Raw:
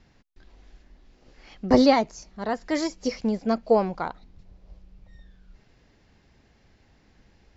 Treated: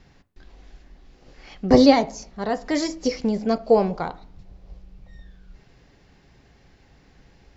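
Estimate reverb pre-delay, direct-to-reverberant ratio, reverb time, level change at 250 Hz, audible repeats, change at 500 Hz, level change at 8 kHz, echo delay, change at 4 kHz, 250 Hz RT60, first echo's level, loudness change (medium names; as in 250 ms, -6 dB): 3 ms, 11.0 dB, 0.55 s, +3.5 dB, no echo, +3.5 dB, no reading, no echo, +4.0 dB, 0.60 s, no echo, +3.0 dB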